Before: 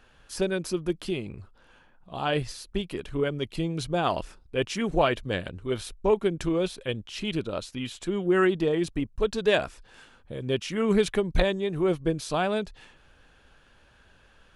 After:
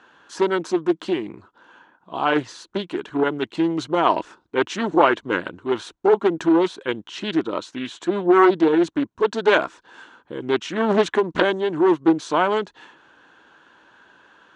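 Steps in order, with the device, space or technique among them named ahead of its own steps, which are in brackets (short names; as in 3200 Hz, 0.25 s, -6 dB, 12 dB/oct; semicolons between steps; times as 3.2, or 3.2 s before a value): full-range speaker at full volume (Doppler distortion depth 0.69 ms; speaker cabinet 240–6900 Hz, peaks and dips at 320 Hz +7 dB, 560 Hz -3 dB, 980 Hz +8 dB, 1500 Hz +5 dB, 2400 Hz -5 dB, 5000 Hz -8 dB); gain +5.5 dB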